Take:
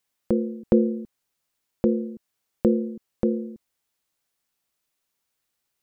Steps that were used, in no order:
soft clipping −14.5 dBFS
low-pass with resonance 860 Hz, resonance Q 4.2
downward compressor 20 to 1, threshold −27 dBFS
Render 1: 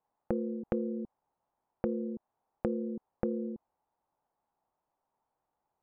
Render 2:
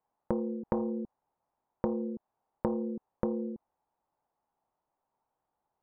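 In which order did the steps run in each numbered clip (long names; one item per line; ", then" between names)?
low-pass with resonance, then downward compressor, then soft clipping
soft clipping, then low-pass with resonance, then downward compressor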